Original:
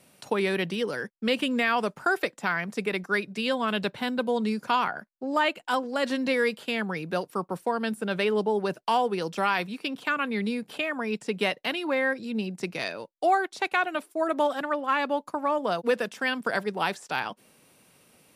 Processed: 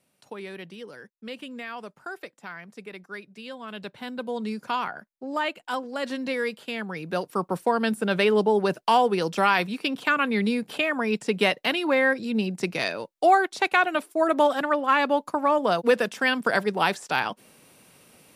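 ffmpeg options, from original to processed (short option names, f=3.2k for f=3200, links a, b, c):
-af "volume=4.5dB,afade=t=in:st=3.62:d=0.92:silence=0.354813,afade=t=in:st=6.9:d=0.63:silence=0.421697"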